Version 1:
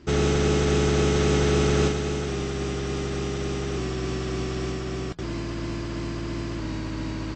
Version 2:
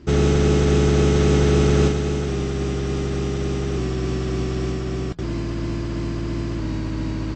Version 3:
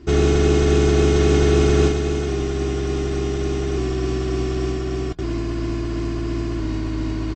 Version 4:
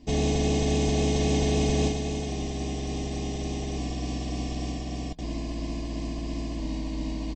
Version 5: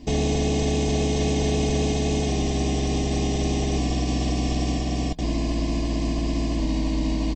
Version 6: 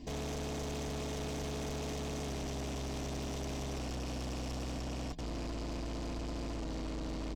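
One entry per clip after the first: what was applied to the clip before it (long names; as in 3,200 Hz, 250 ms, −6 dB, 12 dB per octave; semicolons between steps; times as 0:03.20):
low-shelf EQ 430 Hz +6.5 dB
comb filter 2.8 ms, depth 50%
phaser with its sweep stopped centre 370 Hz, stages 6; level −2 dB
brickwall limiter −22.5 dBFS, peak gain reduction 9 dB; level +8 dB
soft clipping −32 dBFS, distortion −6 dB; level −5 dB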